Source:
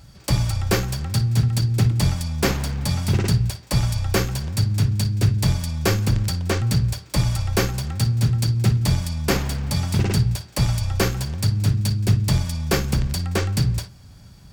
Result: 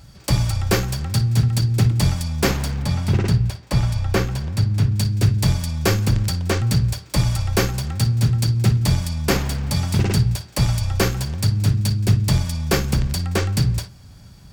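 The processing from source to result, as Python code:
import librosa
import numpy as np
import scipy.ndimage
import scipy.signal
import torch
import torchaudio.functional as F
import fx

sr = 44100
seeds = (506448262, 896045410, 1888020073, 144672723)

y = fx.high_shelf(x, sr, hz=4600.0, db=-9.5, at=(2.82, 4.96))
y = F.gain(torch.from_numpy(y), 1.5).numpy()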